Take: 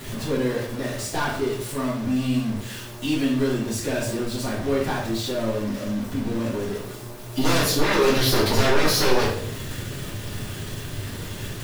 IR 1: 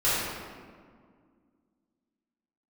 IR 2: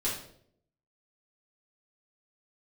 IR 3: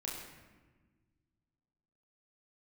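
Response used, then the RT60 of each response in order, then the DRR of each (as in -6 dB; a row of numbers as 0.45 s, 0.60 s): 2; 1.9 s, 0.65 s, 1.4 s; -13.5 dB, -8.0 dB, -4.0 dB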